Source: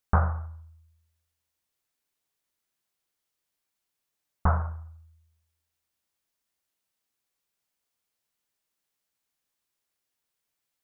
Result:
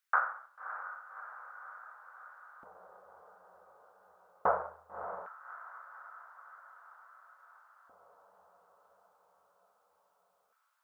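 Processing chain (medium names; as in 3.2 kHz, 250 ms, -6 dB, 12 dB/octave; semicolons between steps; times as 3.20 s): resonant low shelf 350 Hz -11.5 dB, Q 3; echo that smears into a reverb 601 ms, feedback 65%, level -10 dB; LFO high-pass square 0.19 Hz 250–1500 Hz; trim -2.5 dB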